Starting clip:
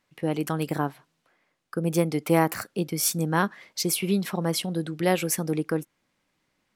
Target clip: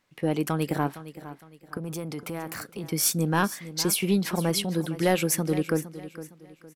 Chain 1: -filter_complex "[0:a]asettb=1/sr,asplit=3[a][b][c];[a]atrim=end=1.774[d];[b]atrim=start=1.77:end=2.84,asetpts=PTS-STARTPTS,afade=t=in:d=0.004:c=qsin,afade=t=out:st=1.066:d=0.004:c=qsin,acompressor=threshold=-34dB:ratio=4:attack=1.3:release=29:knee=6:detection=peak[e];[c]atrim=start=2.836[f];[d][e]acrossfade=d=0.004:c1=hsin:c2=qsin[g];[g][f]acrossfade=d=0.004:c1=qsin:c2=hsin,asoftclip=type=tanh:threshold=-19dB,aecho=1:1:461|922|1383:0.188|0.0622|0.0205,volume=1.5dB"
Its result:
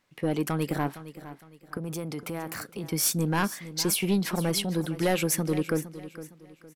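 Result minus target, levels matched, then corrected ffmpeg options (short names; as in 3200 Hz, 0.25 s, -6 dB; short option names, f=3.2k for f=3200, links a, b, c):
soft clip: distortion +8 dB
-filter_complex "[0:a]asettb=1/sr,asplit=3[a][b][c];[a]atrim=end=1.774[d];[b]atrim=start=1.77:end=2.84,asetpts=PTS-STARTPTS,afade=t=in:d=0.004:c=qsin,afade=t=out:st=1.066:d=0.004:c=qsin,acompressor=threshold=-34dB:ratio=4:attack=1.3:release=29:knee=6:detection=peak[e];[c]atrim=start=2.836[f];[d][e]acrossfade=d=0.004:c1=hsin:c2=qsin[g];[g][f]acrossfade=d=0.004:c1=qsin:c2=hsin,asoftclip=type=tanh:threshold=-12.5dB,aecho=1:1:461|922|1383:0.188|0.0622|0.0205,volume=1.5dB"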